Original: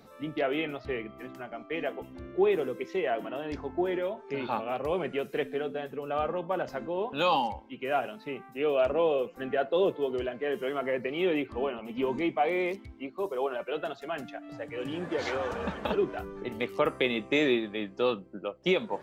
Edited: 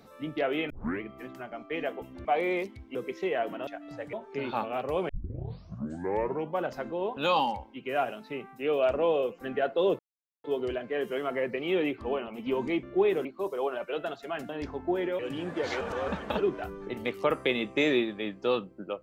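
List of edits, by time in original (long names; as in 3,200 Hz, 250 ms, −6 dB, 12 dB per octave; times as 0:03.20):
0:00.70: tape start 0.31 s
0:02.25–0:02.67: swap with 0:12.34–0:13.04
0:03.39–0:04.09: swap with 0:14.28–0:14.74
0:05.05: tape start 1.50 s
0:09.95: splice in silence 0.45 s
0:15.36–0:15.63: reverse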